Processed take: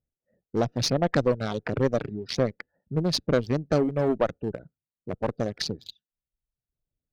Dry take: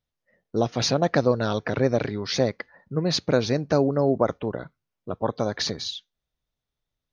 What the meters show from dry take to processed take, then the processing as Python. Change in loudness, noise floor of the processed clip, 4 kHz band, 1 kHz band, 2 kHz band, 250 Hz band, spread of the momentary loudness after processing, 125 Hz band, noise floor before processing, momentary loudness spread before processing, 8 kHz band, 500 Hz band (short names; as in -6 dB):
-2.5 dB, under -85 dBFS, -3.5 dB, -3.5 dB, -3.0 dB, -2.0 dB, 13 LU, -1.5 dB, -85 dBFS, 11 LU, n/a, -2.5 dB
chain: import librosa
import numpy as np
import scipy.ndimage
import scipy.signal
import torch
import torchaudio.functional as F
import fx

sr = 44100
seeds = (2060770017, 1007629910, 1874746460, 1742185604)

y = fx.wiener(x, sr, points=41)
y = fx.dereverb_blind(y, sr, rt60_s=0.86)
y = fx.cheby_harmonics(y, sr, harmonics=(5, 6), levels_db=(-19, -23), full_scale_db=-7.5)
y = F.gain(torch.from_numpy(y), -2.5).numpy()